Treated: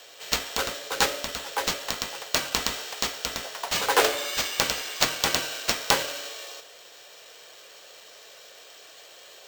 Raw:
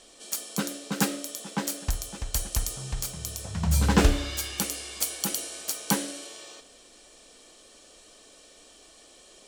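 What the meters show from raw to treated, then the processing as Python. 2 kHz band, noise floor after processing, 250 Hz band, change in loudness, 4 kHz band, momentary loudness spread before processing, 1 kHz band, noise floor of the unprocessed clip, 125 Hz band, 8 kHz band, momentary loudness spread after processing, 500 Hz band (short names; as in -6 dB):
+8.0 dB, -49 dBFS, -9.5 dB, +2.5 dB, +8.0 dB, 12 LU, +7.0 dB, -54 dBFS, -14.5 dB, +1.0 dB, 23 LU, +5.0 dB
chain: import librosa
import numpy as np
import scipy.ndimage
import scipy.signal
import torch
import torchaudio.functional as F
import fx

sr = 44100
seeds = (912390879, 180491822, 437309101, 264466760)

y = scipy.signal.sosfilt(scipy.signal.butter(6, 420.0, 'highpass', fs=sr, output='sos'), x)
y = np.repeat(y[::4], 4)[:len(y)]
y = y * librosa.db_to_amplitude(5.5)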